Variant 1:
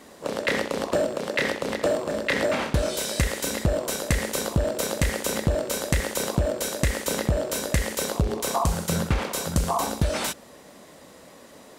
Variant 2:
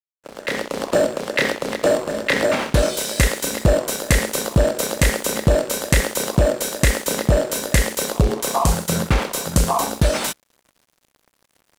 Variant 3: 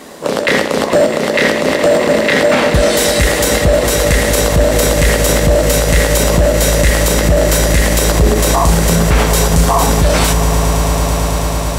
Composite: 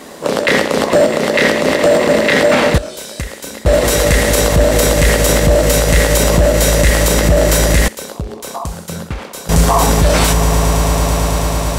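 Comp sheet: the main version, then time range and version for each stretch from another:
3
2.78–3.66 from 1
7.88–9.49 from 1
not used: 2

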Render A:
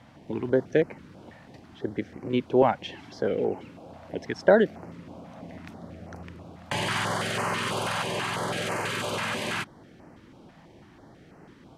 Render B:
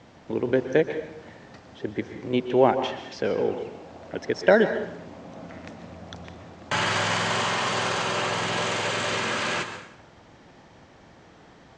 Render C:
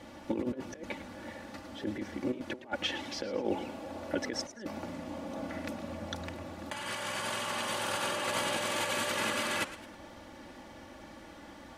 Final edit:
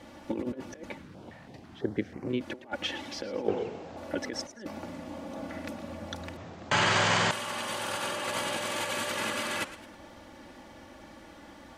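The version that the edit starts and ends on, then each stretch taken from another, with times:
C
0.96–2.36 from A, crossfade 0.24 s
3.48–3.97 from B
6.37–7.31 from B

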